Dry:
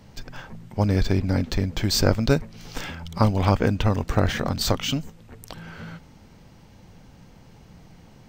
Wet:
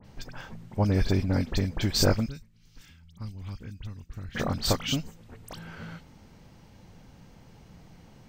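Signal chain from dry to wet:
0:02.26–0:04.35: guitar amp tone stack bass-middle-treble 6-0-2
all-pass dispersion highs, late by 50 ms, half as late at 2,800 Hz
level −3 dB

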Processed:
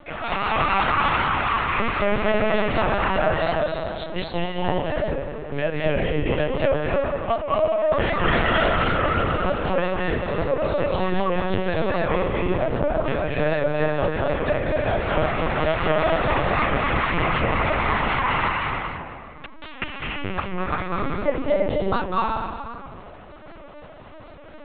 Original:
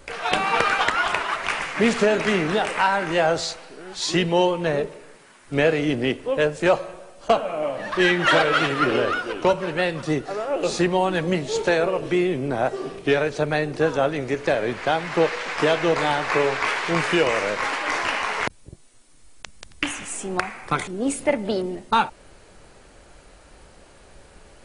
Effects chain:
0:04.05–0:04.65: noise gate −18 dBFS, range −16 dB
dynamic equaliser 550 Hz, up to −4 dB, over −33 dBFS, Q 0.81
downward compressor 2 to 1, threshold −26 dBFS, peak gain reduction 6.5 dB
high-frequency loss of the air 83 metres
hollow resonant body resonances 620/1,100 Hz, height 9 dB, ringing for 40 ms
convolution reverb RT60 2.1 s, pre-delay 191 ms, DRR −3.5 dB
linear-prediction vocoder at 8 kHz pitch kept
wow of a warped record 78 rpm, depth 100 cents

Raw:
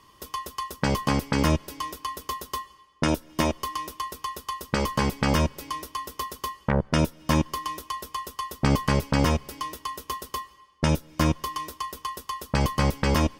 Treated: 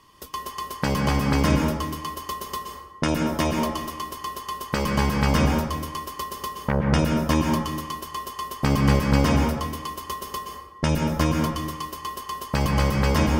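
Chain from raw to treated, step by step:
dense smooth reverb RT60 1.1 s, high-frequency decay 0.45×, pre-delay 110 ms, DRR 1.5 dB

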